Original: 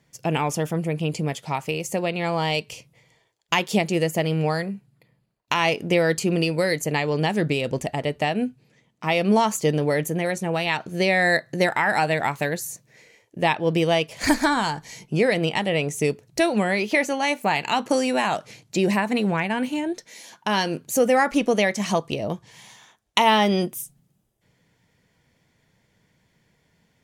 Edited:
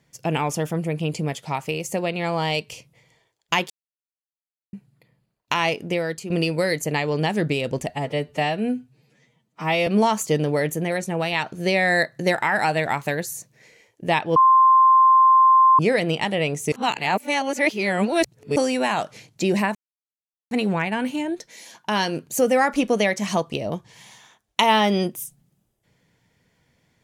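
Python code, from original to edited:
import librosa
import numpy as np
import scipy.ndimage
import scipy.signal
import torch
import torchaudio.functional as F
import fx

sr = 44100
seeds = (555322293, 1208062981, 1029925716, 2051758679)

y = fx.edit(x, sr, fx.silence(start_s=3.7, length_s=1.03),
    fx.fade_out_to(start_s=5.55, length_s=0.75, floor_db=-11.5),
    fx.stretch_span(start_s=7.89, length_s=1.32, factor=1.5),
    fx.bleep(start_s=13.7, length_s=1.43, hz=1050.0, db=-10.5),
    fx.reverse_span(start_s=16.06, length_s=1.84),
    fx.insert_silence(at_s=19.09, length_s=0.76), tone=tone)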